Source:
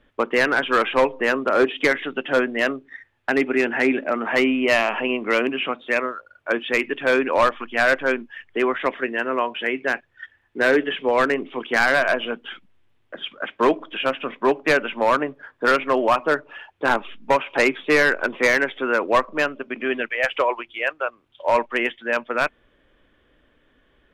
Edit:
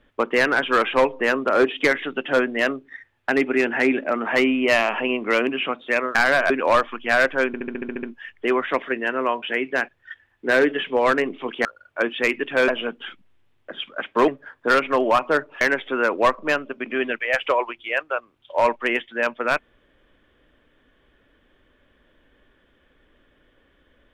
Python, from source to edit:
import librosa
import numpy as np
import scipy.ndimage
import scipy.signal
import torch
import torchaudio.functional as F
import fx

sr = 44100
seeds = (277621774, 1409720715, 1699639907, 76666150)

y = fx.edit(x, sr, fx.swap(start_s=6.15, length_s=1.03, other_s=11.77, other_length_s=0.35),
    fx.stutter(start_s=8.15, slice_s=0.07, count=9),
    fx.cut(start_s=13.72, length_s=1.53),
    fx.cut(start_s=16.58, length_s=1.93), tone=tone)